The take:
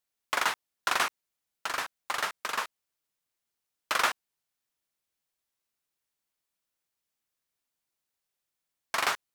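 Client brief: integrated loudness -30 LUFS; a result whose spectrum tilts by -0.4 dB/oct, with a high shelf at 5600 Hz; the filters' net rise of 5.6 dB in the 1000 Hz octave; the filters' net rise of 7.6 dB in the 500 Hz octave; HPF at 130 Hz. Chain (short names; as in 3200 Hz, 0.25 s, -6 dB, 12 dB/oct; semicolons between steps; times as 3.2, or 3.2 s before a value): HPF 130 Hz; bell 500 Hz +8 dB; bell 1000 Hz +5.5 dB; high shelf 5600 Hz -9 dB; gain -2 dB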